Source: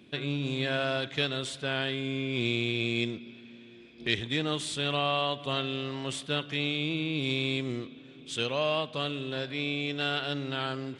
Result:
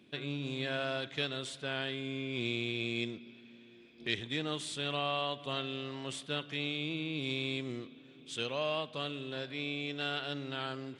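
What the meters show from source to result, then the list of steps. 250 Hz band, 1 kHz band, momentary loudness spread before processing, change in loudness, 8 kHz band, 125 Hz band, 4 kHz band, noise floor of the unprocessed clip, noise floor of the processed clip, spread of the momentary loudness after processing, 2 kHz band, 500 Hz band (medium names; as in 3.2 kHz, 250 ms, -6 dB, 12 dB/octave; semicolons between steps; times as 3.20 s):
-6.0 dB, -5.5 dB, 7 LU, -5.5 dB, -5.5 dB, -7.5 dB, -5.5 dB, -51 dBFS, -57 dBFS, 7 LU, -5.5 dB, -5.5 dB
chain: bass shelf 60 Hz -10.5 dB; trim -5.5 dB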